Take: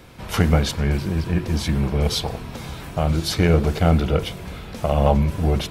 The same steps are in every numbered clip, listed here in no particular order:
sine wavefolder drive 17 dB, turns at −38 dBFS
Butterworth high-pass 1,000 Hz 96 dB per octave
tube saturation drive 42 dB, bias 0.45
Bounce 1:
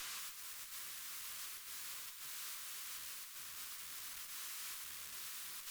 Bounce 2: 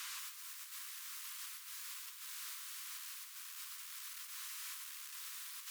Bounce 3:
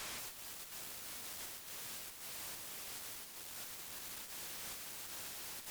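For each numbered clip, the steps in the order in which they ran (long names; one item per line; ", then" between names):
sine wavefolder, then Butterworth high-pass, then tube saturation
sine wavefolder, then tube saturation, then Butterworth high-pass
Butterworth high-pass, then sine wavefolder, then tube saturation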